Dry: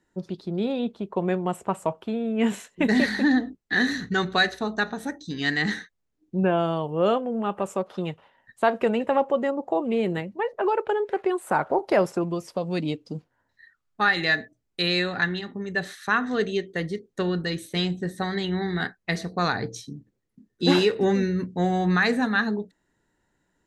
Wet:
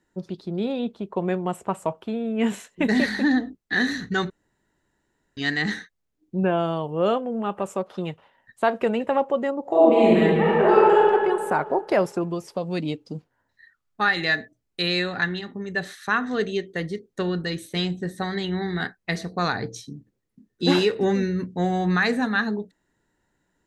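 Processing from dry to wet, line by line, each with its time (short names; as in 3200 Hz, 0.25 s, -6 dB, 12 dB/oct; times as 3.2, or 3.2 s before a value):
4.3–5.37 room tone
9.61–11 reverb throw, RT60 2 s, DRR -8.5 dB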